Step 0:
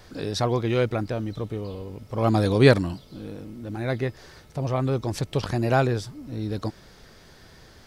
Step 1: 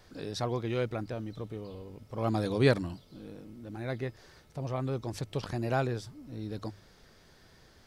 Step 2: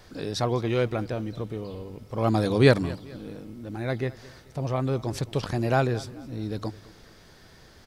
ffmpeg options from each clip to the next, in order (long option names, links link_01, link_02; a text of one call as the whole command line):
ffmpeg -i in.wav -af "bandreject=frequency=50:width_type=h:width=6,bandreject=frequency=100:width_type=h:width=6,volume=-8.5dB" out.wav
ffmpeg -i in.wav -af "aecho=1:1:216|432|648:0.1|0.04|0.016,volume=6.5dB" out.wav